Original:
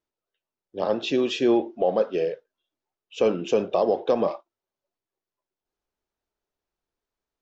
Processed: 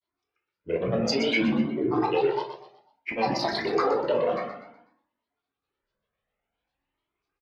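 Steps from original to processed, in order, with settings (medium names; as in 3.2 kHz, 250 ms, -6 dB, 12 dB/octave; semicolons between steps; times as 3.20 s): high-pass 50 Hz; resonant high shelf 3.7 kHz -13.5 dB, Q 3; de-hum 66.03 Hz, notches 29; in parallel at 0 dB: compression, threshold -29 dBFS, peak gain reduction 13 dB; on the sum: peak limiter -13.5 dBFS, peak gain reduction 6 dB; granulator, pitch spread up and down by 12 st; feedback delay 124 ms, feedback 38%, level -9 dB; on a send at -3.5 dB: reverberation RT60 0.35 s, pre-delay 15 ms; on the sum: Shepard-style flanger rising 0.57 Hz; trim +2 dB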